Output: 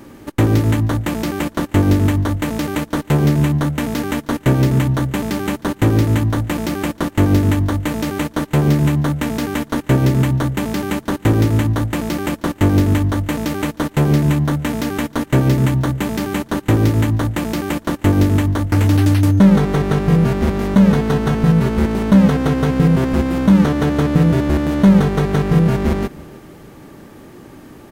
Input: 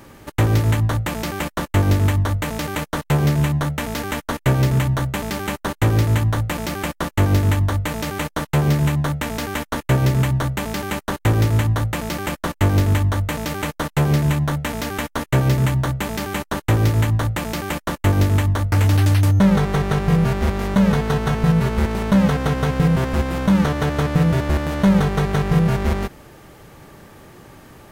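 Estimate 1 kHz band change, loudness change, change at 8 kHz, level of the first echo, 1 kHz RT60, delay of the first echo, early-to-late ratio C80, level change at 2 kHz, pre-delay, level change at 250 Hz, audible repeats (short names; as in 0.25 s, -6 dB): +0.5 dB, +3.0 dB, 0.0 dB, -22.5 dB, none, 0.313 s, none, 0.0 dB, none, +6.0 dB, 2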